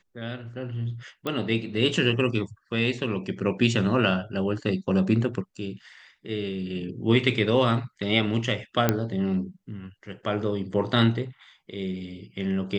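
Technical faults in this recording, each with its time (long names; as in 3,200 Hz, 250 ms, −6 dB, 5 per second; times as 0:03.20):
0:01.27: click −16 dBFS
0:08.89: click −6 dBFS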